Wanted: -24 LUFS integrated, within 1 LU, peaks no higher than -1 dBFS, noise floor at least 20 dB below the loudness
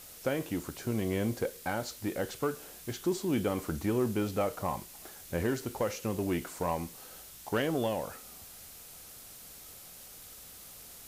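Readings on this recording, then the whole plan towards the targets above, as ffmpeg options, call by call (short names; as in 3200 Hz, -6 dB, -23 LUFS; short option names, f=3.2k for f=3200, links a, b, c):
noise floor -50 dBFS; noise floor target -54 dBFS; loudness -33.5 LUFS; peak -19.5 dBFS; loudness target -24.0 LUFS
-> -af "afftdn=nr=6:nf=-50"
-af "volume=9.5dB"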